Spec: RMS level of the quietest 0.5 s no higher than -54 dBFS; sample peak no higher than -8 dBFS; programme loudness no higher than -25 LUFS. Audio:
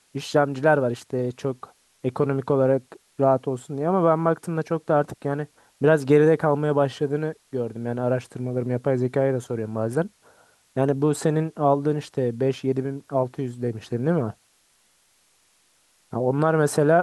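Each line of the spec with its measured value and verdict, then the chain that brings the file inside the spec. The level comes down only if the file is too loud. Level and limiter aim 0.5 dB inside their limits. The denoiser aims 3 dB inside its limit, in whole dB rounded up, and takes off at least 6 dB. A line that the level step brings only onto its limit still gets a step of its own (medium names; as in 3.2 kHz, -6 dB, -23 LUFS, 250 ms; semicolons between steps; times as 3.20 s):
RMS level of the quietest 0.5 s -63 dBFS: pass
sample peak -5.0 dBFS: fail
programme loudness -23.5 LUFS: fail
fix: trim -2 dB; peak limiter -8.5 dBFS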